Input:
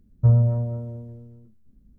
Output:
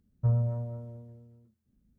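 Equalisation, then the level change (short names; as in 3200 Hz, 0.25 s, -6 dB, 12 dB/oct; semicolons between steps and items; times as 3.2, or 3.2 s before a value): HPF 140 Hz 6 dB/oct; bell 330 Hz -5.5 dB 1.6 oct; -4.5 dB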